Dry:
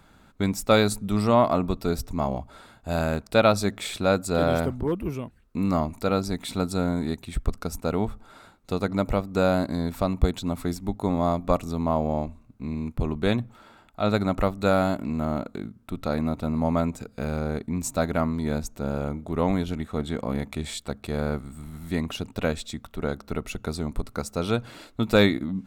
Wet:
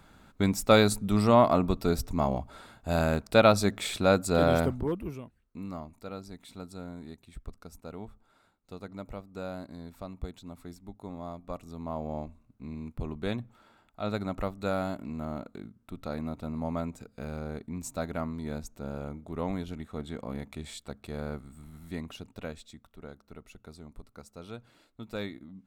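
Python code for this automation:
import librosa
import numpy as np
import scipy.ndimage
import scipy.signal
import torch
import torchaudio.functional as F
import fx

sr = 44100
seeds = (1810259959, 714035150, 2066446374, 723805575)

y = fx.gain(x, sr, db=fx.line((4.68, -1.0), (5.25, -10.0), (5.84, -16.5), (11.47, -16.5), (12.16, -9.0), (21.78, -9.0), (23.19, -18.0)))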